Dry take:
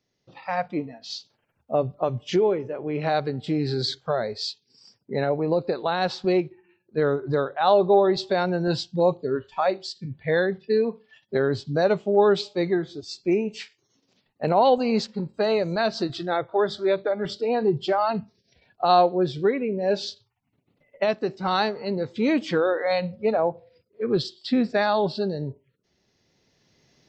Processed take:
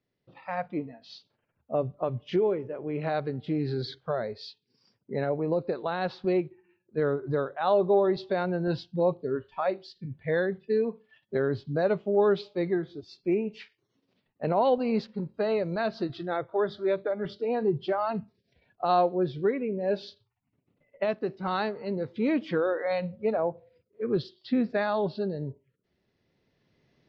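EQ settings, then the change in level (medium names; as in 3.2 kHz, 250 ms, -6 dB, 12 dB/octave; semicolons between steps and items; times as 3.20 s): distance through air 260 m; peaking EQ 800 Hz -3.5 dB 0.3 oct; -3.5 dB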